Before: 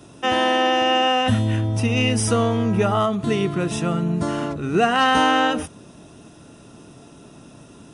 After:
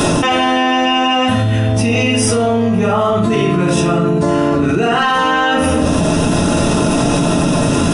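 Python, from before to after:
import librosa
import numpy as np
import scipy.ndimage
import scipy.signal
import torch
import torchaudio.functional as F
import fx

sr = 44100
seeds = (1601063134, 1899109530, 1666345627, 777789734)

y = fx.hum_notches(x, sr, base_hz=50, count=8)
y = fx.room_shoebox(y, sr, seeds[0], volume_m3=110.0, walls='mixed', distance_m=1.4)
y = fx.env_flatten(y, sr, amount_pct=100)
y = y * librosa.db_to_amplitude(-5.0)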